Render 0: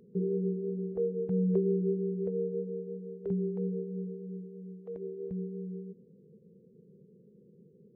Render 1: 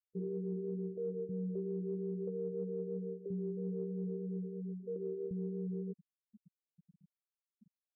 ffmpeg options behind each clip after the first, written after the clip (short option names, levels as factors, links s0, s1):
-af "afftfilt=real='re*gte(hypot(re,im),0.02)':imag='im*gte(hypot(re,im),0.02)':win_size=1024:overlap=0.75,areverse,acompressor=threshold=0.0112:ratio=12,areverse,volume=1.5"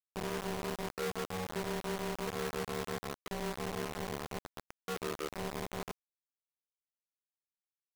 -filter_complex "[0:a]acrossover=split=160|260[s0][s1][s2];[s0]alimiter=level_in=22.4:limit=0.0631:level=0:latency=1,volume=0.0447[s3];[s3][s1][s2]amix=inputs=3:normalize=0,acrusher=bits=5:mix=0:aa=0.000001"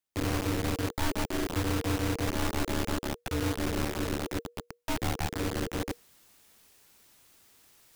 -af "areverse,acompressor=mode=upward:threshold=0.00562:ratio=2.5,areverse,afreqshift=-480,volume=2.51"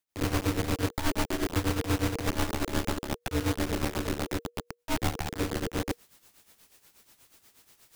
-af "tremolo=f=8.3:d=0.72,volume=1.58"